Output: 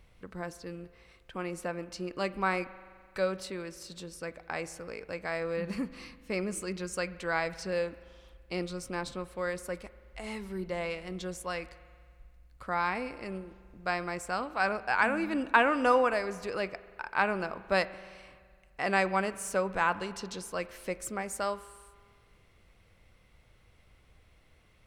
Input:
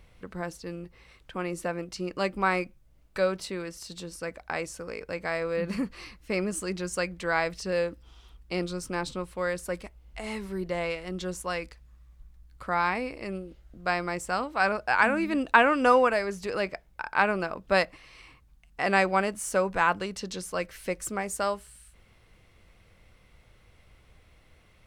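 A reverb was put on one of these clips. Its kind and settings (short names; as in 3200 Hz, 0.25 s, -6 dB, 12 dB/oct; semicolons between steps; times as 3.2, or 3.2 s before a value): spring tank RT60 1.9 s, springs 42 ms, chirp 25 ms, DRR 15.5 dB; gain -4 dB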